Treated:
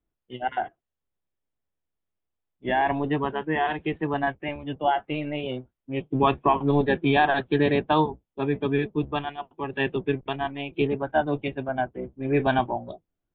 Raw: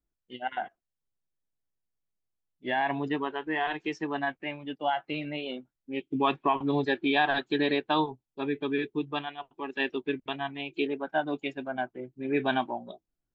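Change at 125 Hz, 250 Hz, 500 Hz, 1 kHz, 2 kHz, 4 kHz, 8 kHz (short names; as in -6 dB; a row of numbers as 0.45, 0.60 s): +11.5 dB, +4.5 dB, +6.0 dB, +5.0 dB, +2.0 dB, -0.5 dB, n/a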